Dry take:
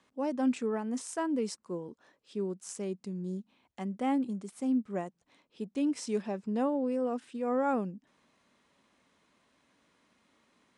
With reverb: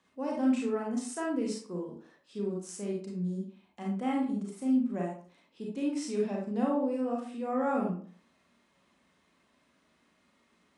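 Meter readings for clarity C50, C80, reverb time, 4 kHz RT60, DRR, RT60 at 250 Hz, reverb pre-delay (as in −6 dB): 2.5 dB, 9.0 dB, 0.45 s, 0.30 s, −2.5 dB, 0.45 s, 32 ms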